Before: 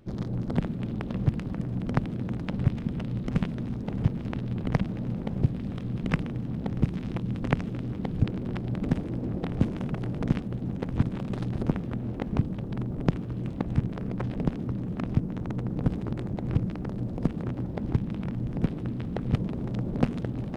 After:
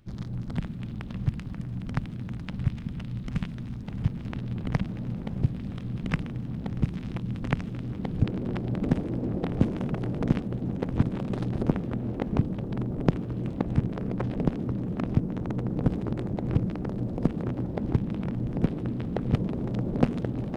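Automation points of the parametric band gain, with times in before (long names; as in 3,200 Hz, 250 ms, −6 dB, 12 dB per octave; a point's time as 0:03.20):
parametric band 460 Hz 2.1 octaves
0:03.88 −11 dB
0:04.40 −4.5 dB
0:07.76 −4.5 dB
0:08.43 +3.5 dB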